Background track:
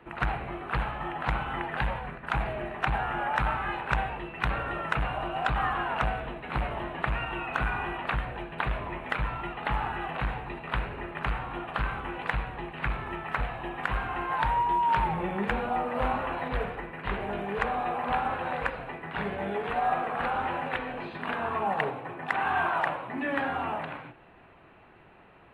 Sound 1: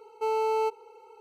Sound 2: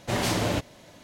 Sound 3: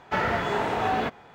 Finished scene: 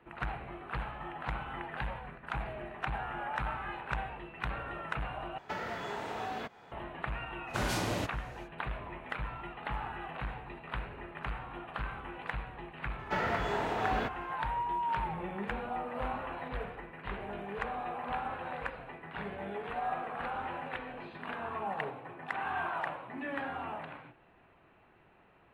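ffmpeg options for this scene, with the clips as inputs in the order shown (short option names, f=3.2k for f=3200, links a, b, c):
-filter_complex "[3:a]asplit=2[a][b];[0:a]volume=-8dB[c];[a]acrossover=split=150|690|3800[d][e][f][g];[d]acompressor=threshold=-54dB:ratio=3[h];[e]acompressor=threshold=-41dB:ratio=3[i];[f]acompressor=threshold=-38dB:ratio=3[j];[g]acompressor=threshold=-52dB:ratio=3[k];[h][i][j][k]amix=inputs=4:normalize=0[l];[c]asplit=2[m][n];[m]atrim=end=5.384[o];[l]atrim=end=1.34,asetpts=PTS-STARTPTS,volume=-4dB[p];[n]atrim=start=6.716[q];[2:a]atrim=end=1.03,asetpts=PTS-STARTPTS,volume=-8dB,afade=t=in:d=0.05,afade=t=out:st=0.98:d=0.05,adelay=328986S[r];[b]atrim=end=1.34,asetpts=PTS-STARTPTS,volume=-7dB,afade=t=in:d=0.004:c=hsin,afade=t=out:st=1.336:d=0.004:c=hsin,adelay=12990[s];[o][p]acrossfade=d=0.004:c1=hsin:c2=hsin[t];[t][q]acrossfade=d=0.004:c1=hsin:c2=hsin[u];[u][r][s]amix=inputs=3:normalize=0"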